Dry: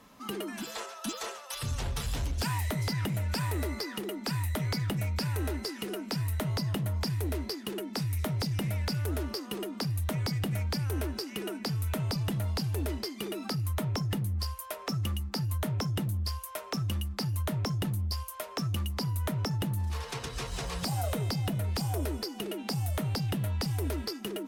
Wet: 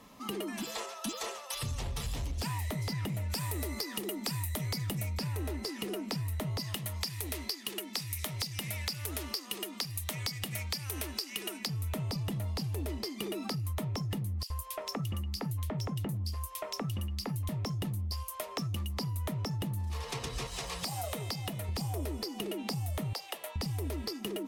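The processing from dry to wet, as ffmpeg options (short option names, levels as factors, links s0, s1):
-filter_complex "[0:a]asettb=1/sr,asplit=3[s0][s1][s2];[s0]atrim=end=3.304[s3];[s1]atrim=start=3.3:end=5.18,asetpts=PTS-STARTPTS,afade=t=in:d=0.004:c=qsin,afade=t=out:st=1.876:d=0.004:c=qsin,highshelf=f=4900:g=10[s4];[s2]atrim=start=5.176[s5];[s3][s4]acrossfade=d=0.004:c1=hsin:c2=qsin[s6];[s6][s5]acrossfade=d=0.004:c1=qsin:c2=hsin,asplit=3[s7][s8][s9];[s7]afade=t=out:st=6.59:d=0.02[s10];[s8]tiltshelf=f=1100:g=-8,afade=t=in:st=6.59:d=0.02,afade=t=out:st=11.66:d=0.02[s11];[s9]afade=t=in:st=11.66:d=0.02[s12];[s10][s11][s12]amix=inputs=3:normalize=0,asettb=1/sr,asplit=3[s13][s14][s15];[s13]atrim=end=14.434[s16];[s14]atrim=start=14.43:end=17.49,asetpts=PTS-STARTPTS,afade=t=in:d=0.004:c=qsin,afade=t=out:st=3.056:d=0.004:c=qsin,acrossover=split=2600[s17][s18];[s17]adelay=70[s19];[s19][s18]amix=inputs=2:normalize=0,atrim=end_sample=134946[s20];[s15]atrim=start=17.486[s21];[s16][s20]acrossfade=d=0.004:c1=hsin:c2=qsin[s22];[s22][s21]acrossfade=d=0.004:c1=qsin:c2=hsin,asettb=1/sr,asplit=3[s23][s24][s25];[s23]atrim=end=20.474[s26];[s24]atrim=start=20.47:end=21.69,asetpts=PTS-STARTPTS,afade=t=in:d=0.004:c=qsin,afade=t=out:st=1.216:d=0.004:c=qsin,lowshelf=f=460:g=-9.5[s27];[s25]atrim=start=21.686[s28];[s26][s27]acrossfade=d=0.004:c1=hsin:c2=qsin[s29];[s29][s28]acrossfade=d=0.004:c1=qsin:c2=hsin,asettb=1/sr,asplit=3[s30][s31][s32];[s30]atrim=end=23.134[s33];[s31]atrim=start=23.13:end=23.56,asetpts=PTS-STARTPTS,afade=t=in:d=0.004:c=qsin,afade=t=out:st=0.426:d=0.004:c=qsin,highpass=f=520:w=0.5412,highpass=f=520:w=1.3066[s34];[s32]atrim=start=23.556[s35];[s33][s34]acrossfade=d=0.004:c1=hsin:c2=qsin[s36];[s36][s35]acrossfade=d=0.004:c1=qsin:c2=hsin,equalizer=f=1500:w=6.5:g=-9,acompressor=threshold=0.02:ratio=6,volume=1.19"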